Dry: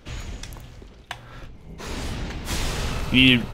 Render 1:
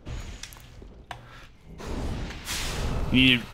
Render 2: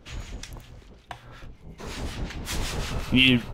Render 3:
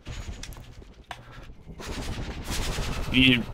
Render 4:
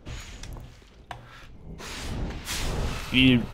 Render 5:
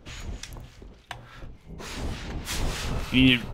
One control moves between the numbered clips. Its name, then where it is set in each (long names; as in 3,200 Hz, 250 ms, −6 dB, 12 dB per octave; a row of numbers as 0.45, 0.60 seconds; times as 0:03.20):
two-band tremolo in antiphase, speed: 1, 5.4, 10, 1.8, 3.4 Hertz